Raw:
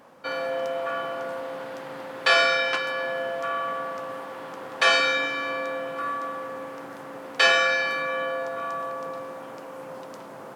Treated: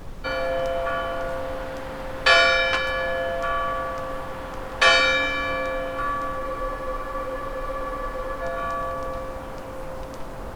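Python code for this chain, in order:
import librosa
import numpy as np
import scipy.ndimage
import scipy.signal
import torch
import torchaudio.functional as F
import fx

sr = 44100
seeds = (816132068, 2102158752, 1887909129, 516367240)

y = fx.dmg_noise_colour(x, sr, seeds[0], colour='brown', level_db=-38.0)
y = fx.spec_freeze(y, sr, seeds[1], at_s=6.41, hold_s=2.01)
y = y * 10.0 ** (3.0 / 20.0)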